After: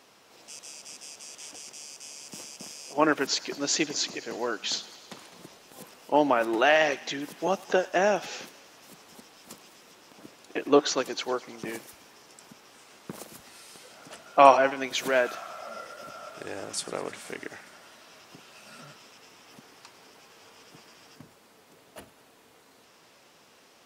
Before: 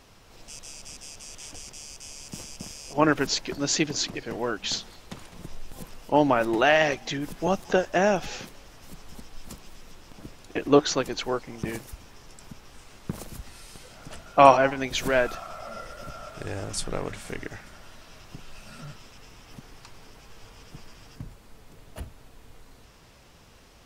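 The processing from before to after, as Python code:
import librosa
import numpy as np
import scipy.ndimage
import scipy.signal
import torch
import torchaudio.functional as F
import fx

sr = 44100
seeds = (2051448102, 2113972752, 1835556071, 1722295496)

p1 = scipy.signal.sosfilt(scipy.signal.butter(2, 270.0, 'highpass', fs=sr, output='sos'), x)
p2 = p1 + fx.echo_thinned(p1, sr, ms=104, feedback_pct=78, hz=1200.0, wet_db=-19.0, dry=0)
y = F.gain(torch.from_numpy(p2), -1.0).numpy()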